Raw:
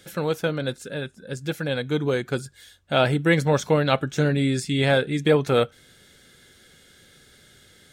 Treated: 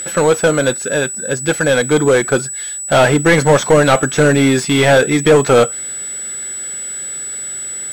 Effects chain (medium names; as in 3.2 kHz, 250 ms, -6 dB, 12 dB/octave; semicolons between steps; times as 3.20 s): whistle 7.9 kHz -31 dBFS; overdrive pedal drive 24 dB, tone 1.5 kHz, clips at -6 dBFS; trim +5.5 dB